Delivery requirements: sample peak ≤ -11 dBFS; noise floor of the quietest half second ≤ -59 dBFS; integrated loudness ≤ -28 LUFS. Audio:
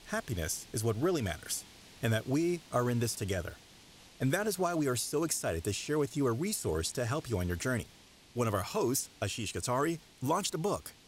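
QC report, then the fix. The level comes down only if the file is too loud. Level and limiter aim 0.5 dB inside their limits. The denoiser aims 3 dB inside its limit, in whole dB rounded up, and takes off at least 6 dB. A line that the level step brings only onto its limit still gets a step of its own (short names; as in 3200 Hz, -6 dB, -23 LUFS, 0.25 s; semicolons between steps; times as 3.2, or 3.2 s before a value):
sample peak -17.0 dBFS: OK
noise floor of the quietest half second -58 dBFS: fail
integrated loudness -33.0 LUFS: OK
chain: denoiser 6 dB, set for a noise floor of -58 dBFS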